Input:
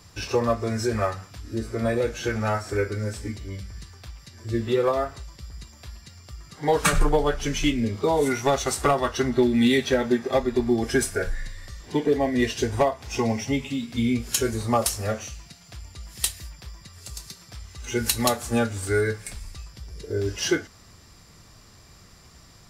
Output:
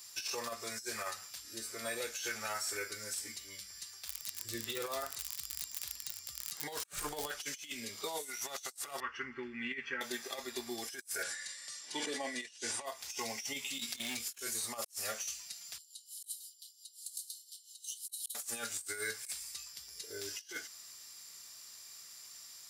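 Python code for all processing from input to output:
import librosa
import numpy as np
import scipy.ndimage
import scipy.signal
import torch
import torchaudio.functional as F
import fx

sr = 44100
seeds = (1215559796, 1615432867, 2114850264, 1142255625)

y = fx.low_shelf(x, sr, hz=200.0, db=10.0, at=(4.07, 7.29), fade=0.02)
y = fx.dmg_crackle(y, sr, seeds[0], per_s=62.0, level_db=-25.0, at=(4.07, 7.29), fade=0.02)
y = fx.chain(y, sr, fx.lowpass(hz=3300.0, slope=24),
    fx.fixed_phaser(hz=1600.0, stages=4), at=(9.0, 10.01))
y = fx.chain(y, sr, fx.ellip_bandpass(low_hz=120.0, high_hz=9200.0, order=3, stop_db=50),
    fx.comb(ms=3.5, depth=0.34),
    fx.sustainer(db_per_s=68.0), at=(11.23, 12.86))
y = fx.chain(y, sr, fx.overload_stage(gain_db=21.5),
    fx.transient(attack_db=10, sustain_db=-3),
    fx.band_squash(depth_pct=100), at=(13.79, 14.39))
y = fx.chain(y, sr, fx.tremolo(hz=5.7, depth=0.63),
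    fx.cheby_ripple_highpass(hz=2900.0, ripple_db=9), at=(15.78, 18.35))
y = np.diff(y, prepend=0.0)
y = fx.over_compress(y, sr, threshold_db=-42.0, ratio=-0.5)
y = y * librosa.db_to_amplitude(1.5)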